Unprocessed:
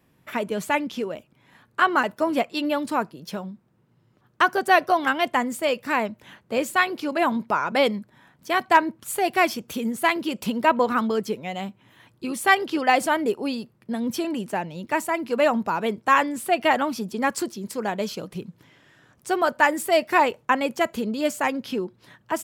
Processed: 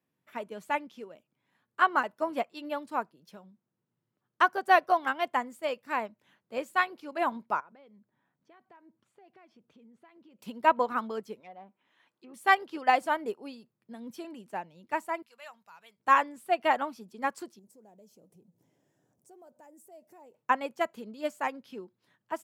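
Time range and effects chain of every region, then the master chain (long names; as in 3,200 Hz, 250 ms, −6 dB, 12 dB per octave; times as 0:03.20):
0:07.60–0:10.39: downward compressor 4 to 1, threshold −35 dBFS + head-to-tape spacing loss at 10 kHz 26 dB
0:11.40–0:12.34: treble cut that deepens with the level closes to 1,000 Hz, closed at −27.5 dBFS + mid-hump overdrive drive 11 dB, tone 4,400 Hz, clips at −21 dBFS + parametric band 98 Hz −13 dB 0.98 octaves
0:15.22–0:16.00: high-pass filter 41 Hz + guitar amp tone stack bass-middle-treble 10-0-10
0:17.59–0:20.35: mu-law and A-law mismatch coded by mu + flat-topped bell 2,200 Hz −15 dB 2.4 octaves + downward compressor 2 to 1, threshold −42 dBFS
whole clip: high-pass filter 130 Hz; dynamic equaliser 930 Hz, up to +6 dB, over −31 dBFS, Q 0.7; expander for the loud parts 1.5 to 1, over −31 dBFS; level −8 dB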